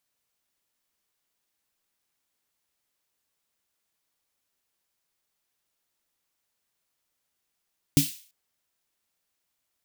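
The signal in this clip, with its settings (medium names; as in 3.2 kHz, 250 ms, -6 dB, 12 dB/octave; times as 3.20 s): snare drum length 0.34 s, tones 150 Hz, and 280 Hz, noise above 2.6 kHz, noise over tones -7 dB, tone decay 0.16 s, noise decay 0.45 s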